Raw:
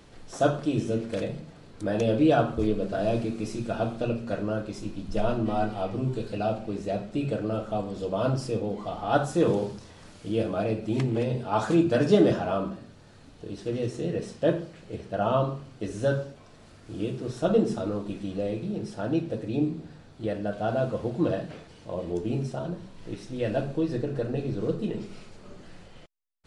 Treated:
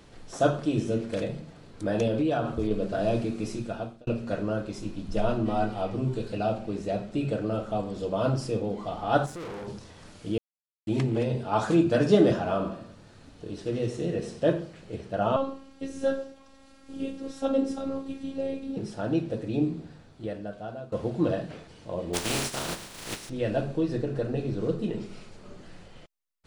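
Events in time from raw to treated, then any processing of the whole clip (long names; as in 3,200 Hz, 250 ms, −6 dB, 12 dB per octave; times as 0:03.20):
0:02.07–0:02.71: downward compressor, threshold −22 dBFS
0:03.52–0:04.07: fade out
0:09.26–0:09.68: tube saturation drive 36 dB, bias 0.7
0:10.38–0:10.87: silence
0:12.37–0:14.53: repeating echo 91 ms, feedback 44%, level −12 dB
0:15.36–0:18.77: phases set to zero 271 Hz
0:19.78–0:20.92: fade out, to −18 dB
0:22.13–0:23.28: compressing power law on the bin magnitudes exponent 0.32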